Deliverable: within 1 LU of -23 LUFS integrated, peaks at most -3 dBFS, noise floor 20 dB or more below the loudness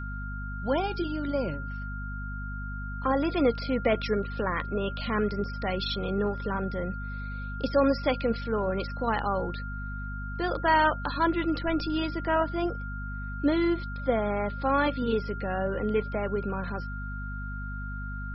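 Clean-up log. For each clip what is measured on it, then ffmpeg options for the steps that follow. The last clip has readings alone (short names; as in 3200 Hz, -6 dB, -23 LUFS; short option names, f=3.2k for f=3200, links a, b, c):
hum 50 Hz; harmonics up to 250 Hz; hum level -33 dBFS; steady tone 1400 Hz; tone level -39 dBFS; loudness -29.5 LUFS; peak -11.0 dBFS; loudness target -23.0 LUFS
-> -af "bandreject=f=50:t=h:w=4,bandreject=f=100:t=h:w=4,bandreject=f=150:t=h:w=4,bandreject=f=200:t=h:w=4,bandreject=f=250:t=h:w=4"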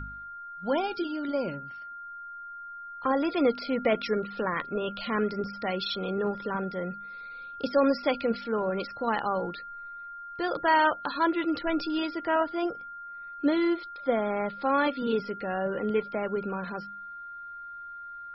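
hum none; steady tone 1400 Hz; tone level -39 dBFS
-> -af "bandreject=f=1.4k:w=30"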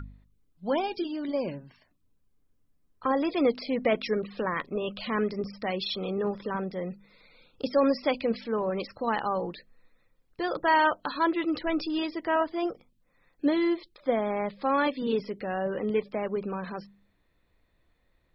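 steady tone none; loudness -29.0 LUFS; peak -11.5 dBFS; loudness target -23.0 LUFS
-> -af "volume=6dB"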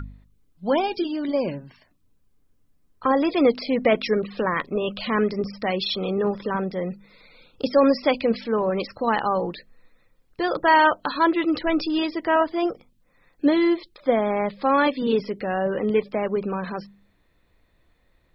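loudness -23.0 LUFS; peak -5.5 dBFS; noise floor -64 dBFS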